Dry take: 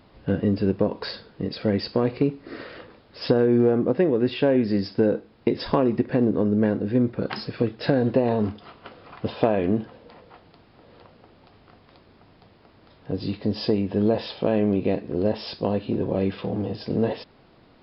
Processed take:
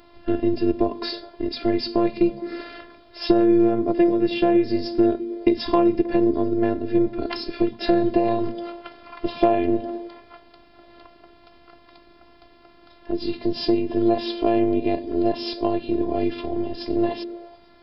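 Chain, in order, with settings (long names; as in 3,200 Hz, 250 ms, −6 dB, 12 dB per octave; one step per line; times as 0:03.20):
dynamic equaliser 1,500 Hz, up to −5 dB, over −43 dBFS, Q 1.3
phases set to zero 344 Hz
echo through a band-pass that steps 105 ms, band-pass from 180 Hz, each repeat 0.7 octaves, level −10 dB
level +6 dB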